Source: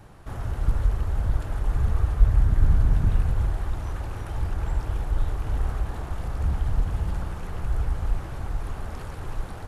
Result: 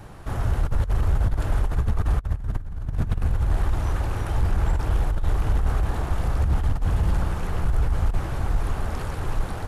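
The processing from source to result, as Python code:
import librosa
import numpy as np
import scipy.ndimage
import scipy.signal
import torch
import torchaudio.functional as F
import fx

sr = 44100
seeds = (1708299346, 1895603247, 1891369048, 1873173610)

y = fx.over_compress(x, sr, threshold_db=-23.0, ratio=-0.5)
y = np.clip(y, -10.0 ** (-18.0 / 20.0), 10.0 ** (-18.0 / 20.0))
y = F.gain(torch.from_numpy(y), 4.0).numpy()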